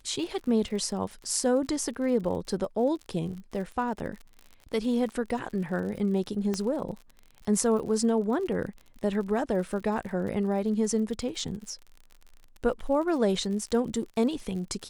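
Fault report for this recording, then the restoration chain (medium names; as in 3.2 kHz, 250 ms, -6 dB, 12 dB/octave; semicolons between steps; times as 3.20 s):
crackle 53 per s -37 dBFS
6.54 s: pop -17 dBFS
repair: de-click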